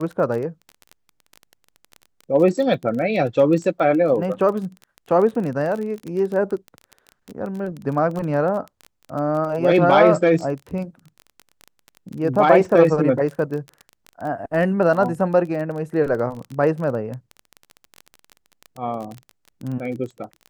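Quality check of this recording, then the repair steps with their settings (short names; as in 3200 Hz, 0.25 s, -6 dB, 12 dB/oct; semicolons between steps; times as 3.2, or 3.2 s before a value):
crackle 21/s -27 dBFS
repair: de-click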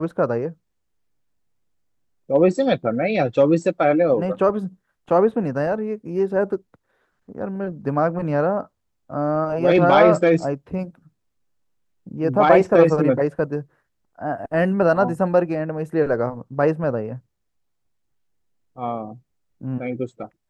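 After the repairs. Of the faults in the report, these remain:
none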